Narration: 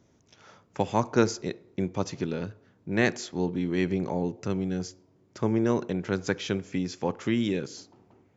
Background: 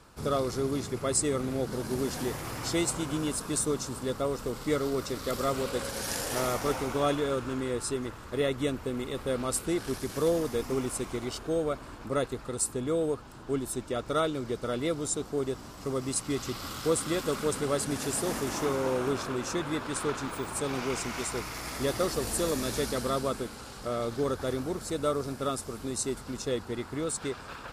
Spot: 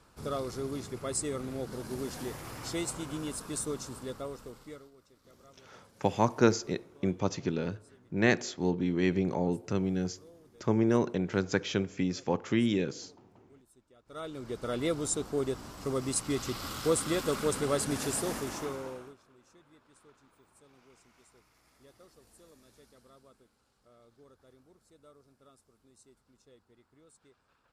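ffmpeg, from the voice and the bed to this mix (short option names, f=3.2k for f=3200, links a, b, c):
-filter_complex "[0:a]adelay=5250,volume=-1dB[a];[1:a]volume=23dB,afade=t=out:st=3.92:d=0.99:silence=0.0668344,afade=t=in:st=14.05:d=0.8:silence=0.0354813,afade=t=out:st=18.02:d=1.14:silence=0.0354813[b];[a][b]amix=inputs=2:normalize=0"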